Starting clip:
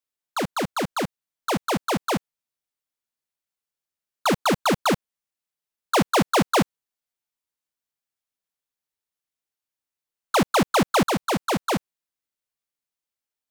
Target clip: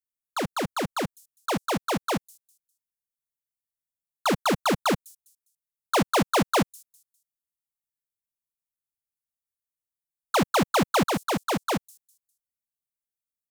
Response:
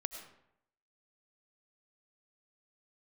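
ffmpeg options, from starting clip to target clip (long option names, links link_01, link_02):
-filter_complex "[0:a]acrossover=split=210|7100[link_01][link_02][link_03];[link_02]aeval=exprs='val(0)*gte(abs(val(0)),0.01)':channel_layout=same[link_04];[link_03]aecho=1:1:202|404|606:0.376|0.101|0.0274[link_05];[link_01][link_04][link_05]amix=inputs=3:normalize=0,volume=-2.5dB"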